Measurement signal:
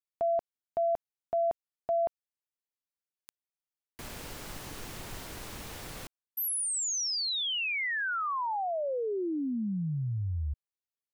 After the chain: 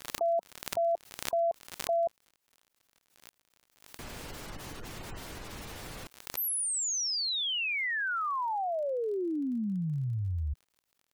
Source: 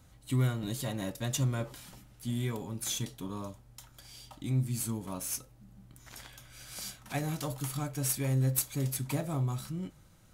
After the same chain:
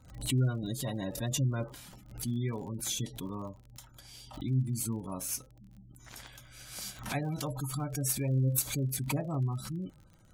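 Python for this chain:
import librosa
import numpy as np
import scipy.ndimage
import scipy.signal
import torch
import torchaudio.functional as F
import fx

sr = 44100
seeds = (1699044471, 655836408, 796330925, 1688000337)

y = fx.spec_gate(x, sr, threshold_db=-25, keep='strong')
y = fx.dmg_crackle(y, sr, seeds[0], per_s=45.0, level_db=-47.0)
y = fx.pre_swell(y, sr, db_per_s=99.0)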